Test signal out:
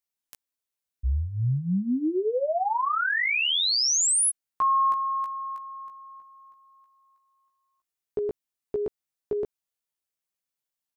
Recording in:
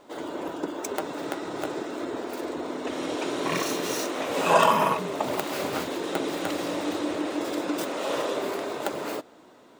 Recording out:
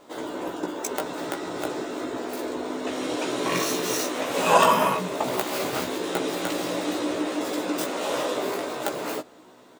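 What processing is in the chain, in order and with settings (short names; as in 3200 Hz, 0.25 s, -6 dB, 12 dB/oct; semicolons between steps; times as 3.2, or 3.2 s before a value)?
high shelf 5300 Hz +4.5 dB; doubler 16 ms -4 dB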